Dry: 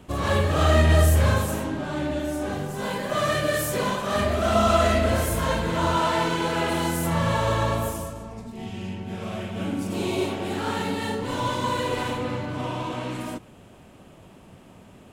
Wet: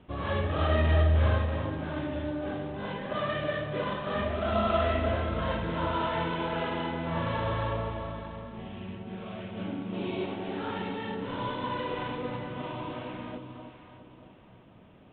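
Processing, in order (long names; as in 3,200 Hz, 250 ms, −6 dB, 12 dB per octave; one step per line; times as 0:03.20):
delay that swaps between a low-pass and a high-pass 314 ms, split 970 Hz, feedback 56%, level −6 dB
level −7.5 dB
IMA ADPCM 32 kbit/s 8,000 Hz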